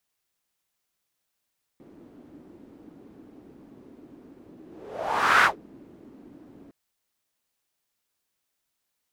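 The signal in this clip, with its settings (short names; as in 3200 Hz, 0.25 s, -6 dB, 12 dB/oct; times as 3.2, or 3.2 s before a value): whoosh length 4.91 s, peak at 3.64, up 0.86 s, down 0.14 s, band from 290 Hz, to 1500 Hz, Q 3.5, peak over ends 31.5 dB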